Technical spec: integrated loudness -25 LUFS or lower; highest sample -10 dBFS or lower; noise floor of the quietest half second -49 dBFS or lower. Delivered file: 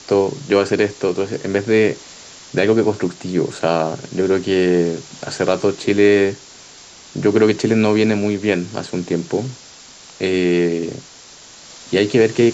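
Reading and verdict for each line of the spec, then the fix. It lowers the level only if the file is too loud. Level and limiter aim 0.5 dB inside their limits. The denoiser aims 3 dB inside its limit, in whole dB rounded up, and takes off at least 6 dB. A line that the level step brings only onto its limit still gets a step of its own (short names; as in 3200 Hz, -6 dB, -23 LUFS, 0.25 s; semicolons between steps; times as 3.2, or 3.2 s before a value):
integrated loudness -18.0 LUFS: fail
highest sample -3.0 dBFS: fail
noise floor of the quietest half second -42 dBFS: fail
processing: gain -7.5 dB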